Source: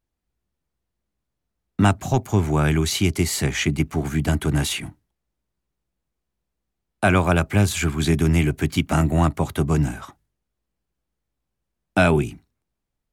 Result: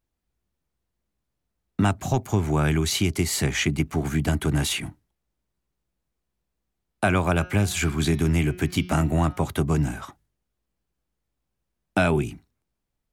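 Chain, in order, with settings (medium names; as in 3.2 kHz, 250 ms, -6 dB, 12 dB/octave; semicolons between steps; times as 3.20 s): 7.32–9.46 s: de-hum 180.5 Hz, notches 35; compression 2:1, threshold -20 dBFS, peak gain reduction 5 dB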